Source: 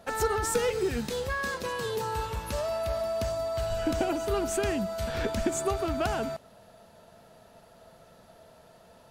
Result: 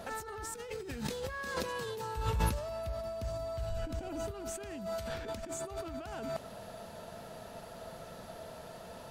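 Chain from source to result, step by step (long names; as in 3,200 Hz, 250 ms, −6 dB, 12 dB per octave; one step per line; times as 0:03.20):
compressor whose output falls as the input rises −39 dBFS, ratio −1
0:02.17–0:04.31: low-shelf EQ 190 Hz +11 dB
level −1 dB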